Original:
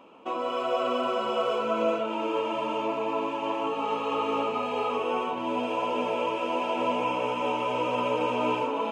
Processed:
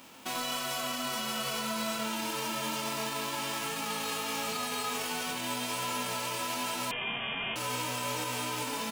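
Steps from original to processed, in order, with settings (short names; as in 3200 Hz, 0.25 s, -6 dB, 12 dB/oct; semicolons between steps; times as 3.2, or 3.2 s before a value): spectral whitening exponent 0.3; vocal rider within 4 dB 0.5 s; limiter -21.5 dBFS, peak gain reduction 7.5 dB; doubler 23 ms -5.5 dB; 6.91–7.56 inverted band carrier 3400 Hz; gain -4 dB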